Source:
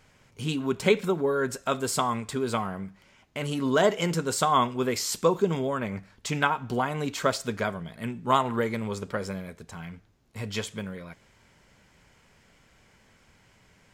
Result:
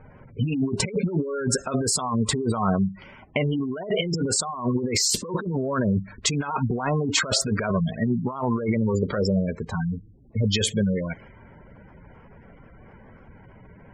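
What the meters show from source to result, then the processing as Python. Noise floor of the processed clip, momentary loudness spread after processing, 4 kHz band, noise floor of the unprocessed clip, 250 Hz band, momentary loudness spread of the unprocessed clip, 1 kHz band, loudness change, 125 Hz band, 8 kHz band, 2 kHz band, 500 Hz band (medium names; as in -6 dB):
-50 dBFS, 7 LU, +6.5 dB, -61 dBFS, +6.0 dB, 15 LU, -3.5 dB, +2.5 dB, +8.0 dB, +8.5 dB, 0.0 dB, -0.5 dB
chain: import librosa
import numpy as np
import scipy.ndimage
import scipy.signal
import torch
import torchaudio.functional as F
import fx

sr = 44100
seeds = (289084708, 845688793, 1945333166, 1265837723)

y = fx.spec_gate(x, sr, threshold_db=-15, keep='strong')
y = fx.over_compress(y, sr, threshold_db=-34.0, ratio=-1.0)
y = fx.env_lowpass(y, sr, base_hz=1000.0, full_db=-29.5)
y = F.gain(torch.from_numpy(y), 9.0).numpy()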